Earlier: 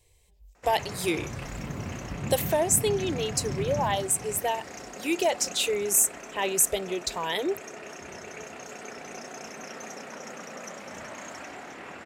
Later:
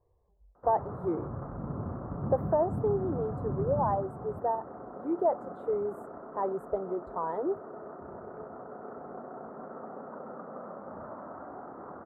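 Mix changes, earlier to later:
speech: add tilt +1.5 dB/oct; master: add elliptic low-pass 1300 Hz, stop band 50 dB

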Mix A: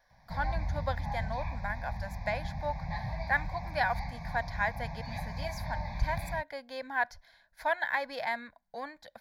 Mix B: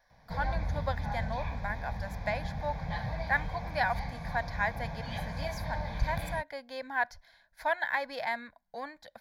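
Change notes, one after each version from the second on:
background: remove fixed phaser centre 2100 Hz, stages 8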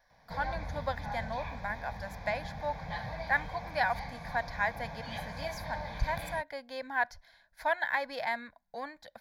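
background: add low shelf 230 Hz -8 dB

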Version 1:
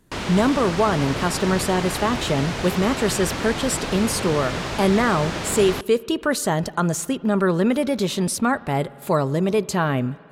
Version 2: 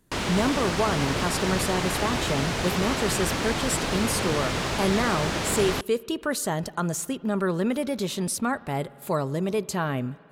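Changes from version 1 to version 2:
speech -6.0 dB; master: add high shelf 7500 Hz +5.5 dB

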